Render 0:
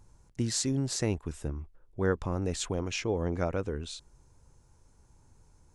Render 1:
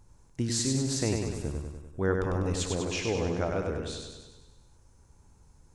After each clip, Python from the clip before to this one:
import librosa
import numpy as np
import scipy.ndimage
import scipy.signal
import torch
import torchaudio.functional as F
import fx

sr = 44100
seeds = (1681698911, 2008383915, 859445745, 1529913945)

y = fx.echo_feedback(x, sr, ms=98, feedback_pct=59, wet_db=-4)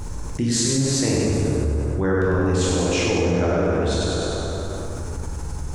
y = fx.rev_plate(x, sr, seeds[0], rt60_s=2.0, hf_ratio=0.55, predelay_ms=0, drr_db=-5.0)
y = fx.env_flatten(y, sr, amount_pct=70)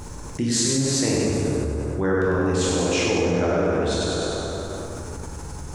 y = fx.low_shelf(x, sr, hz=88.0, db=-10.0)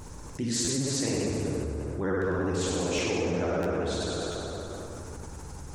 y = fx.vibrato(x, sr, rate_hz=15.0, depth_cents=86.0)
y = fx.buffer_glitch(y, sr, at_s=(0.64, 2.95, 3.62, 4.31), block=512, repeats=2)
y = y * librosa.db_to_amplitude(-7.0)